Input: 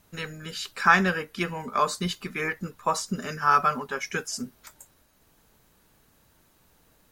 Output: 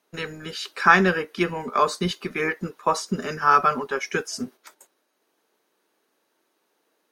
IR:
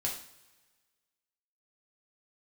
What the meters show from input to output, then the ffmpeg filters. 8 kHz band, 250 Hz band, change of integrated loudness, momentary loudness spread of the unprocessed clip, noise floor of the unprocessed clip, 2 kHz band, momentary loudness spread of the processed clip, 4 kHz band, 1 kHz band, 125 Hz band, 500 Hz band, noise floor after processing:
-0.5 dB, +4.0 dB, +3.5 dB, 14 LU, -63 dBFS, +3.0 dB, 15 LU, +2.0 dB, +3.0 dB, +2.5 dB, +6.0 dB, -72 dBFS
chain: -filter_complex "[0:a]equalizer=f=370:w=1.9:g=6,acrossover=split=270[s0][s1];[s0]aeval=exprs='sgn(val(0))*max(abs(val(0))-0.00376,0)':c=same[s2];[s1]agate=range=0.355:threshold=0.00316:ratio=16:detection=peak[s3];[s2][s3]amix=inputs=2:normalize=0,highshelf=f=11000:g=-10.5,bandreject=f=7400:w=9.5,volume=1.41"

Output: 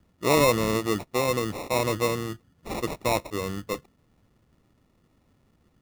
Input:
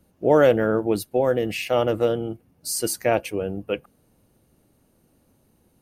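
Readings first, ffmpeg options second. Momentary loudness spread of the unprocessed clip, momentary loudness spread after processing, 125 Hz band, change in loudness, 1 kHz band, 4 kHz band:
13 LU, 15 LU, -0.5 dB, -4.0 dB, 0.0 dB, +1.5 dB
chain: -af "lowshelf=f=200:g=6.5,acrusher=samples=28:mix=1:aa=0.000001,volume=0.531"

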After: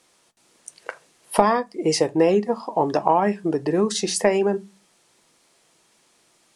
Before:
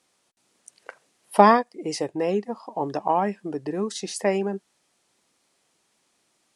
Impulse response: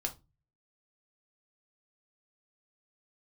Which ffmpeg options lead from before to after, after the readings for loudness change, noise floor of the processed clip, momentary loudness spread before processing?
+2.5 dB, -62 dBFS, 14 LU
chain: -filter_complex "[0:a]acompressor=threshold=0.0891:ratio=12,asplit=2[s0][s1];[1:a]atrim=start_sample=2205,asetrate=57330,aresample=44100[s2];[s1][s2]afir=irnorm=-1:irlink=0,volume=0.668[s3];[s0][s3]amix=inputs=2:normalize=0,volume=1.68"

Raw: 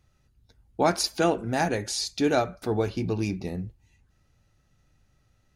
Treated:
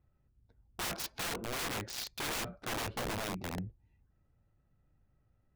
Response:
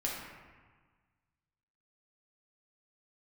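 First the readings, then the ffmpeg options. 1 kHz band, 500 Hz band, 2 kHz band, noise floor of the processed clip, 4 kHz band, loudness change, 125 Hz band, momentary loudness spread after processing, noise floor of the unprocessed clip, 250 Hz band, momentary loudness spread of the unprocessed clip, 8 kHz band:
-11.5 dB, -16.5 dB, -5.5 dB, -74 dBFS, -6.5 dB, -11.0 dB, -12.0 dB, 5 LU, -67 dBFS, -15.5 dB, 10 LU, -6.5 dB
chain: -af "adynamicsmooth=sensitivity=5:basefreq=1600,aeval=exprs='(mod(18.8*val(0)+1,2)-1)/18.8':c=same,volume=0.501"

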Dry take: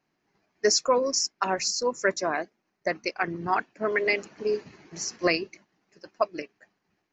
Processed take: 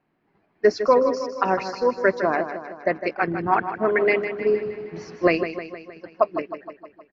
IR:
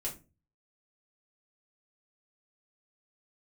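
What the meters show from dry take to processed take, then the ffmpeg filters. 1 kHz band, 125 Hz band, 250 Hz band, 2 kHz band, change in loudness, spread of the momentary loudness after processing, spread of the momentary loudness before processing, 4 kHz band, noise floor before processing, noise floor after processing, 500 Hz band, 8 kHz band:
+5.5 dB, +6.5 dB, +7.0 dB, +3.0 dB, +4.5 dB, 16 LU, 11 LU, -10.0 dB, -78 dBFS, -68 dBFS, +6.5 dB, no reading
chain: -af "lowpass=f=3900:w=0.5412,lowpass=f=3900:w=1.3066,highshelf=f=2400:g=-11,aecho=1:1:156|312|468|624|780|936|1092:0.316|0.18|0.103|0.0586|0.0334|0.019|0.0108,volume=2.11"

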